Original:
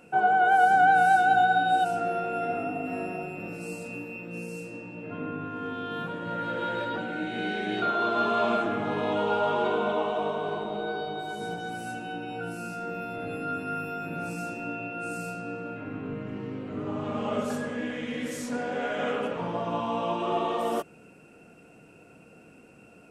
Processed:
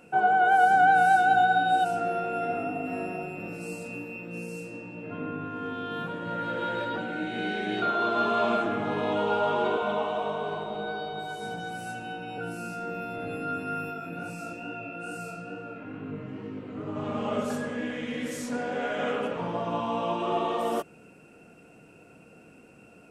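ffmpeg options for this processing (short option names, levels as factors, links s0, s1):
-filter_complex "[0:a]asettb=1/sr,asplit=3[s0][s1][s2];[s0]atrim=end=9.774[s3];[s1]atrim=start=9.77:end=12.38,asetpts=PTS-STARTPTS,afade=t=in:d=0.004:c=qsin,afade=t=out:st=2.606:d=0.004:c=qsin,acrossover=split=330[s4][s5];[s4]adelay=50[s6];[s6][s5]amix=inputs=2:normalize=0,atrim=end_sample=115101[s7];[s2]atrim=start=12.376[s8];[s3][s7]acrossfade=d=0.004:c1=hsin:c2=qsin[s9];[s9][s8]acrossfade=d=0.004:c1=qsin:c2=hsin,asplit=3[s10][s11][s12];[s10]afade=t=out:st=13.9:d=0.02[s13];[s11]flanger=delay=18.5:depth=4.9:speed=2.3,afade=t=in:st=13.9:d=0.02,afade=t=out:st=16.95:d=0.02[s14];[s12]afade=t=in:st=16.95:d=0.02[s15];[s13][s14][s15]amix=inputs=3:normalize=0"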